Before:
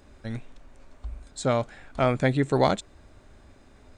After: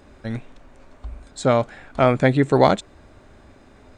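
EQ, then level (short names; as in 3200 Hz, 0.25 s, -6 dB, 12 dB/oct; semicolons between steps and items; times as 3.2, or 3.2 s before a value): low shelf 85 Hz -7 dB; high shelf 3600 Hz -6.5 dB; +7.0 dB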